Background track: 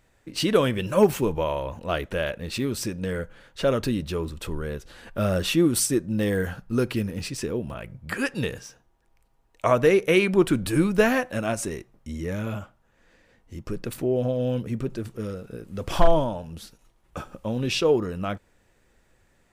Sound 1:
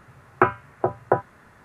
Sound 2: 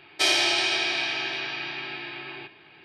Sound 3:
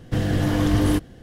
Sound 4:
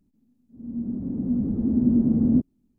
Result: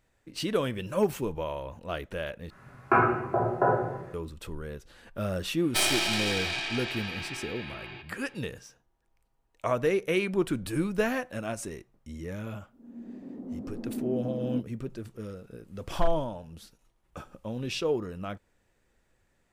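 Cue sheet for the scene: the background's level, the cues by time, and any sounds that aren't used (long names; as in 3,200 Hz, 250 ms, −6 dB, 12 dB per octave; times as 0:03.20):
background track −7.5 dB
0:02.50: overwrite with 1 −10 dB + rectangular room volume 360 cubic metres, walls mixed, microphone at 3.1 metres
0:05.55: mix in 2 −5 dB + stylus tracing distortion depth 0.075 ms
0:12.20: mix in 4 −1 dB + high-pass filter 480 Hz
not used: 3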